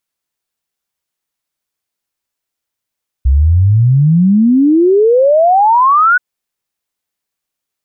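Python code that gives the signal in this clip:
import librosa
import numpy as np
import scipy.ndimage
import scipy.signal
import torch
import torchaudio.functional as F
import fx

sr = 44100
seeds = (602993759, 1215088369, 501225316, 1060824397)

y = fx.ess(sr, length_s=2.93, from_hz=63.0, to_hz=1500.0, level_db=-5.5)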